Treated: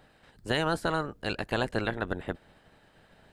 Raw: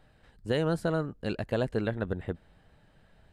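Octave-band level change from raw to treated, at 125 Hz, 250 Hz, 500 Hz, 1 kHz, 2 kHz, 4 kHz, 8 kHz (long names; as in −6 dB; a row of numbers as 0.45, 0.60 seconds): −3.5 dB, −2.0 dB, −1.5 dB, +7.0 dB, +6.5 dB, +7.0 dB, can't be measured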